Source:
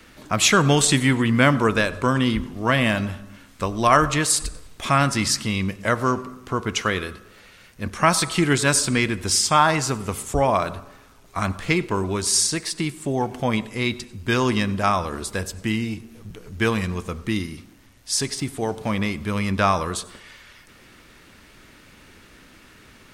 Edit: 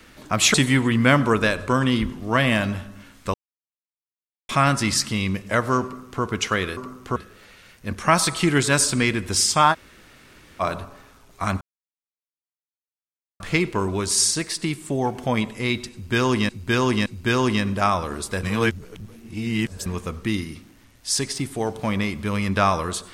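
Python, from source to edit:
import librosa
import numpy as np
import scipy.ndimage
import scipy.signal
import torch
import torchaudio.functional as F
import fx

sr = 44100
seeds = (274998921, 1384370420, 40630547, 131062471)

y = fx.edit(x, sr, fx.cut(start_s=0.54, length_s=0.34),
    fx.silence(start_s=3.68, length_s=1.15),
    fx.duplicate(start_s=6.18, length_s=0.39, to_s=7.11),
    fx.room_tone_fill(start_s=9.68, length_s=0.88, crossfade_s=0.04),
    fx.insert_silence(at_s=11.56, length_s=1.79),
    fx.repeat(start_s=14.08, length_s=0.57, count=3),
    fx.reverse_span(start_s=15.45, length_s=1.43), tone=tone)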